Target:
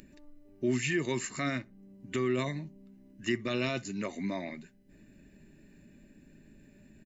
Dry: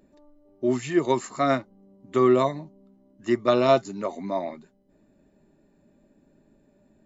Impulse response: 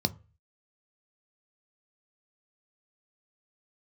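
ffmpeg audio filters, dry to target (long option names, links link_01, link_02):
-filter_complex "[0:a]superequalizer=11b=2.51:12b=2.51,asplit=2[link_01][link_02];[link_02]acompressor=threshold=-34dB:ratio=6,volume=-1dB[link_03];[link_01][link_03]amix=inputs=2:normalize=0,alimiter=limit=-14dB:level=0:latency=1:release=26,acompressor=mode=upward:threshold=-46dB:ratio=2.5,equalizer=frequency=780:width_type=o:width=2.3:gain=-14.5,asplit=2[link_04][link_05];[link_05]adelay=63,lowpass=frequency=1600:poles=1,volume=-22dB,asplit=2[link_06][link_07];[link_07]adelay=63,lowpass=frequency=1600:poles=1,volume=0.28[link_08];[link_04][link_06][link_08]amix=inputs=3:normalize=0"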